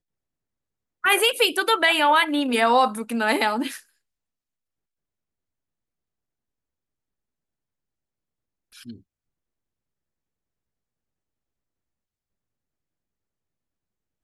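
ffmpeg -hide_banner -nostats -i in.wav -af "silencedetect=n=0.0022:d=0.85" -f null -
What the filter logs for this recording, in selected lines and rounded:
silence_start: 0.00
silence_end: 1.03 | silence_duration: 1.03
silence_start: 3.84
silence_end: 8.72 | silence_duration: 4.88
silence_start: 9.01
silence_end: 14.23 | silence_duration: 5.22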